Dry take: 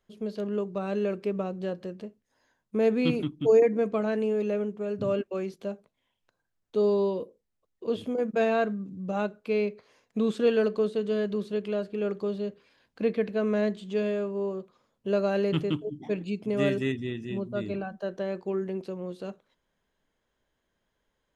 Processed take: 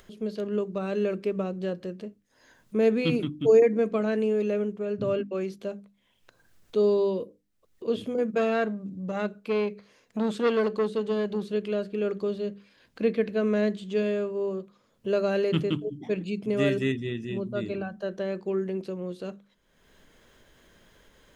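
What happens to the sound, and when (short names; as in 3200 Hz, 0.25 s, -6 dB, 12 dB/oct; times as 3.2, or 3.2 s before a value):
4.79–5.41 air absorption 55 m
8.38–11.43 core saturation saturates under 860 Hz
whole clip: bell 840 Hz -5 dB 0.84 oct; notches 50/100/150/200/250/300 Hz; upward compressor, threshold -44 dBFS; gain +2.5 dB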